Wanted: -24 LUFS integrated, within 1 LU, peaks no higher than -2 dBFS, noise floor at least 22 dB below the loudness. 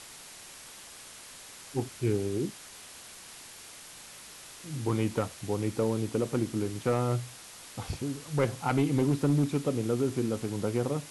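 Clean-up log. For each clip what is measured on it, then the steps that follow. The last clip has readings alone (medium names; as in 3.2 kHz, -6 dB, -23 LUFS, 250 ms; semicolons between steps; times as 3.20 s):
clipped samples 0.3%; clipping level -18.5 dBFS; noise floor -48 dBFS; noise floor target -53 dBFS; loudness -30.5 LUFS; peak level -18.5 dBFS; loudness target -24.0 LUFS
-> clip repair -18.5 dBFS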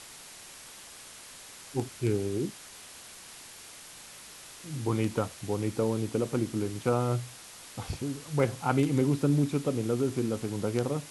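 clipped samples 0.0%; noise floor -48 dBFS; noise floor target -52 dBFS
-> noise print and reduce 6 dB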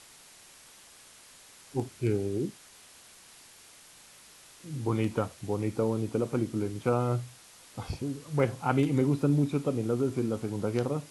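noise floor -54 dBFS; loudness -30.0 LUFS; peak level -11.0 dBFS; loudness target -24.0 LUFS
-> trim +6 dB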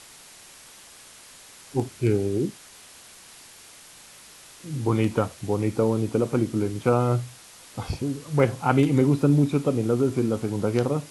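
loudness -24.0 LUFS; peak level -5.0 dBFS; noise floor -48 dBFS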